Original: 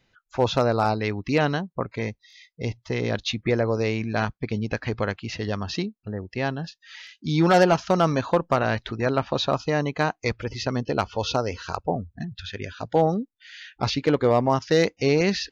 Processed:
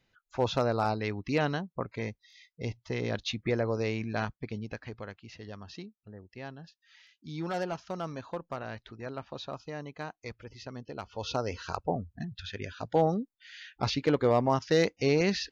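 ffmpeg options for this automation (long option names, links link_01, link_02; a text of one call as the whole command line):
ffmpeg -i in.wav -af "volume=4.5dB,afade=type=out:start_time=4.08:duration=0.92:silence=0.334965,afade=type=in:start_time=11.01:duration=0.53:silence=0.281838" out.wav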